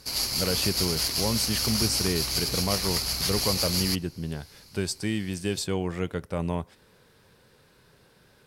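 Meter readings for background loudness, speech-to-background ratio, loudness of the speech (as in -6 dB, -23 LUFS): -26.0 LUFS, -4.5 dB, -30.5 LUFS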